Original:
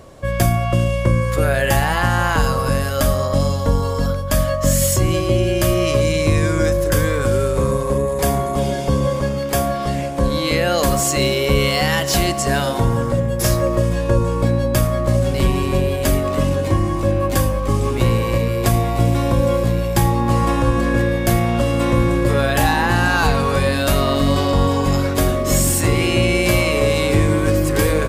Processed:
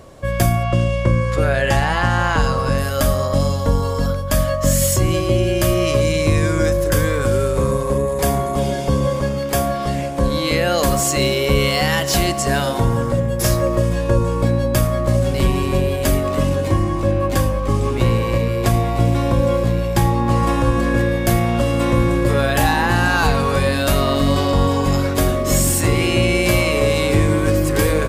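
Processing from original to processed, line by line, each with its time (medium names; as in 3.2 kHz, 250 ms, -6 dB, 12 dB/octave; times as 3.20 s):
0.63–2.78 s: low-pass 6.9 kHz
16.84–20.43 s: treble shelf 8.3 kHz -6.5 dB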